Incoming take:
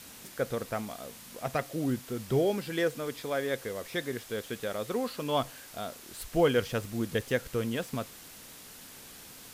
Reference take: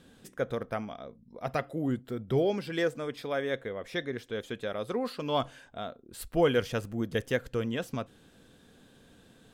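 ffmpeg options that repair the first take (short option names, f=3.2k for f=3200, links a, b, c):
-af "afwtdn=0.004"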